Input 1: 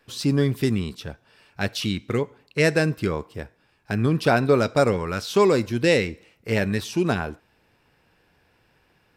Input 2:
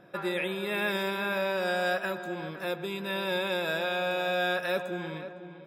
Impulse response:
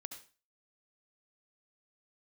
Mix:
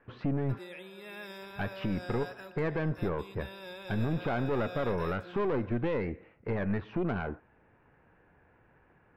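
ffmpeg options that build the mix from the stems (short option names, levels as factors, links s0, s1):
-filter_complex "[0:a]alimiter=limit=0.133:level=0:latency=1:release=169,lowpass=f=1900:w=0.5412,lowpass=f=1900:w=1.3066,aeval=exprs='(tanh(15.8*val(0)+0.5)-tanh(0.5))/15.8':c=same,volume=1.33,asplit=3[s0][s1][s2];[s0]atrim=end=0.59,asetpts=PTS-STARTPTS,afade=t=out:st=0.586:d=0.004:c=hsin[s3];[s1]atrim=start=0.59:end=1.41,asetpts=PTS-STARTPTS,volume=0[s4];[s2]atrim=start=1.41,asetpts=PTS-STARTPTS,afade=t=in:d=0.004:c=hsin[s5];[s3][s4][s5]concat=n=3:v=0:a=1[s6];[1:a]equalizer=f=5300:w=7.2:g=11.5,adelay=350,volume=0.178[s7];[s6][s7]amix=inputs=2:normalize=0,alimiter=limit=0.075:level=0:latency=1:release=63"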